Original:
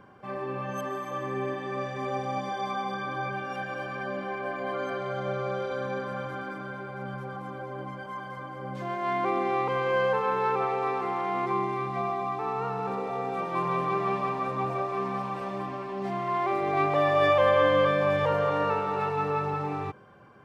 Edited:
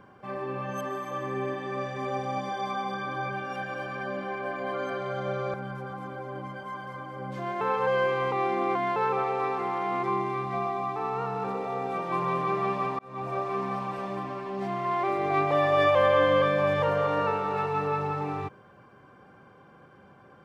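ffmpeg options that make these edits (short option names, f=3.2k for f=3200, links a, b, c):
-filter_complex "[0:a]asplit=5[a][b][c][d][e];[a]atrim=end=5.542[f];[b]atrim=start=6.968:end=9.042[g];[c]atrim=start=9.038:end=10.392,asetpts=PTS-STARTPTS,areverse[h];[d]atrim=start=10.388:end=14.42,asetpts=PTS-STARTPTS,afade=t=out:st=4.028:d=0.004:c=hsin[i];[e]atrim=start=14.42,asetpts=PTS-STARTPTS,afade=t=in:d=0.4[j];[f][g]acrossfade=d=0.004:c1=hsin:c2=hsin[k];[k][h]acrossfade=d=0.004:c1=hsin:c2=hsin[l];[i][j]concat=n=2:v=0:a=1[m];[l][m]acrossfade=d=0.004:c1=hsin:c2=hsin"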